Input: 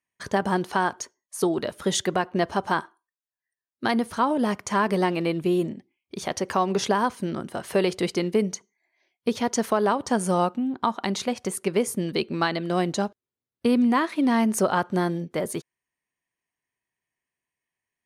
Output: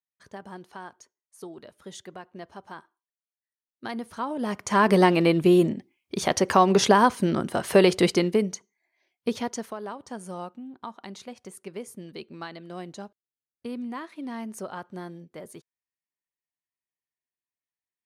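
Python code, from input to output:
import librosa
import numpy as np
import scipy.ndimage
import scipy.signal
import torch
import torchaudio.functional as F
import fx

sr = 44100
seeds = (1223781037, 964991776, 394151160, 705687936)

y = fx.gain(x, sr, db=fx.line((2.75, -17.5), (4.34, -7.5), (4.9, 5.0), (8.09, 5.0), (8.49, -2.5), (9.36, -2.5), (9.76, -14.0)))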